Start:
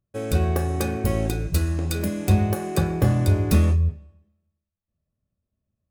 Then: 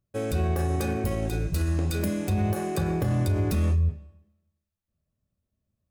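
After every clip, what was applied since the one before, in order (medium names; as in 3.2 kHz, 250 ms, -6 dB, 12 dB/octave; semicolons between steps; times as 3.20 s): peak limiter -17.5 dBFS, peak gain reduction 10.5 dB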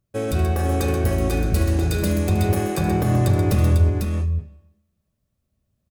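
multi-tap echo 75/131/498 ms -12/-7/-4 dB; trim +4.5 dB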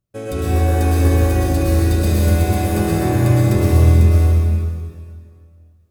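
plate-style reverb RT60 2.1 s, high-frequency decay 0.9×, pre-delay 95 ms, DRR -7 dB; trim -4 dB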